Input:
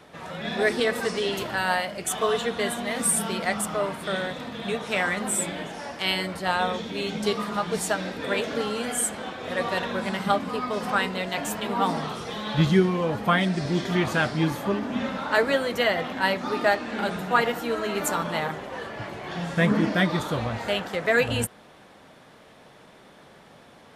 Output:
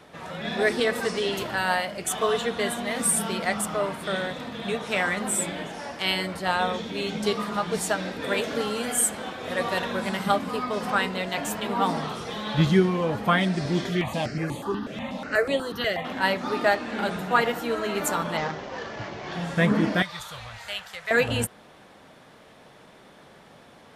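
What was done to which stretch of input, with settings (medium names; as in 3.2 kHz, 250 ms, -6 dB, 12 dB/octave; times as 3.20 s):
8.22–10.63 s: treble shelf 10 kHz +8.5 dB
13.89–16.05 s: stepped phaser 8.2 Hz 250–5400 Hz
18.37–19.33 s: CVSD coder 32 kbps
20.02–21.11 s: amplifier tone stack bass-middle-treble 10-0-10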